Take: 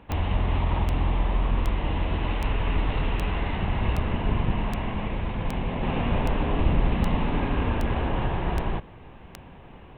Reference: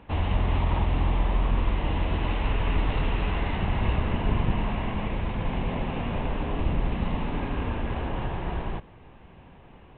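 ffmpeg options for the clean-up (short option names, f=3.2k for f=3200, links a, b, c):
-filter_complex "[0:a]adeclick=t=4,asplit=3[a][b][c];[a]afade=t=out:st=6.08:d=0.02[d];[b]highpass=f=140:w=0.5412,highpass=f=140:w=1.3066,afade=t=in:st=6.08:d=0.02,afade=t=out:st=6.2:d=0.02[e];[c]afade=t=in:st=6.2:d=0.02[f];[d][e][f]amix=inputs=3:normalize=0,asetnsamples=n=441:p=0,asendcmd='5.83 volume volume -4dB',volume=0dB"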